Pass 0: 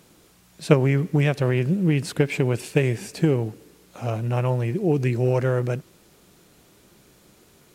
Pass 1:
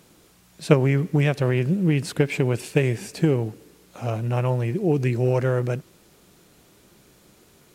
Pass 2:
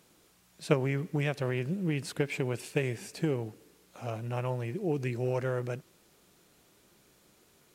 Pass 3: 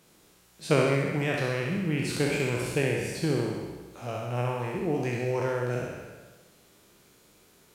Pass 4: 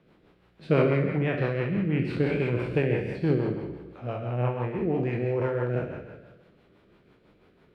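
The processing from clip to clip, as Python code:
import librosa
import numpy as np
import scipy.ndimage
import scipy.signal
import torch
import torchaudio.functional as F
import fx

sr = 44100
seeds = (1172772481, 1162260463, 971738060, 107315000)

y1 = x
y2 = fx.low_shelf(y1, sr, hz=340.0, db=-5.0)
y2 = y2 * librosa.db_to_amplitude(-7.0)
y3 = fx.spec_trails(y2, sr, decay_s=1.35)
y3 = fx.room_flutter(y3, sr, wall_m=11.2, rt60_s=0.7)
y4 = fx.rotary(y3, sr, hz=6.0)
y4 = fx.air_absorb(y4, sr, metres=430.0)
y4 = y4 * librosa.db_to_amplitude(4.5)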